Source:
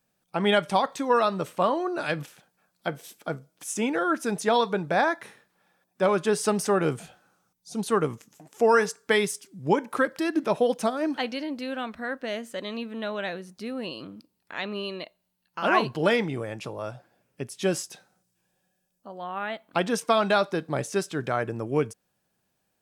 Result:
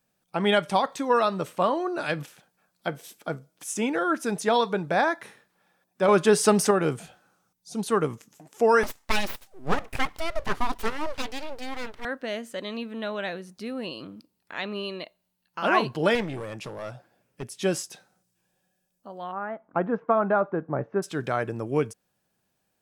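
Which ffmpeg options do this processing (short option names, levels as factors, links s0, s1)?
-filter_complex "[0:a]asettb=1/sr,asplit=3[s0][s1][s2];[s0]atrim=end=6.084[s3];[s1]atrim=start=6.08:end=6.71,asetpts=PTS-STARTPTS,afade=t=in:d=0.004:c=qsin,afade=t=out:st=0.626:d=0.004:c=qsin,acontrast=28[s4];[s2]atrim=start=6.706[s5];[s3][s4]acrossfade=d=0.004:c1=hsin:c2=qsin[s6];[s6][s5]acrossfade=d=0.004:c1=qsin:c2=hsin,asettb=1/sr,asplit=3[s7][s8][s9];[s7]atrim=end=8.834[s10];[s8]atrim=start=8.83:end=12.05,asetpts=PTS-STARTPTS,afade=t=in:d=0.004:c=qsin,afade=t=out:st=3.216:d=0.004:c=qsin,aeval=exprs='abs(val(0))':c=same[s11];[s9]atrim=start=12.046[s12];[s10][s11]acrossfade=d=0.004:c1=hsin:c2=qsin[s13];[s13][s12]acrossfade=d=0.004:c1=qsin:c2=hsin,asettb=1/sr,asplit=3[s14][s15][s16];[s14]atrim=end=16.154[s17];[s15]atrim=start=16.15:end=17.43,asetpts=PTS-STARTPTS,afade=t=in:d=0.004:c=qsin,afade=t=out:st=1.276:d=0.004:c=qsin,aeval=exprs='clip(val(0),-1,0.0251)':c=same[s18];[s16]atrim=start=17.426[s19];[s17][s18]acrossfade=d=0.004:c1=hsin:c2=qsin[s20];[s20][s19]acrossfade=d=0.004:c1=qsin:c2=hsin,asplit=3[s21][s22][s23];[s21]afade=t=out:st=19.31:d=0.02[s24];[s22]lowpass=f=1500:w=0.5412,lowpass=f=1500:w=1.3066,afade=t=in:st=19.31:d=0.02,afade=t=out:st=21.02:d=0.02[s25];[s23]afade=t=in:st=21.02:d=0.02[s26];[s24][s25][s26]amix=inputs=3:normalize=0"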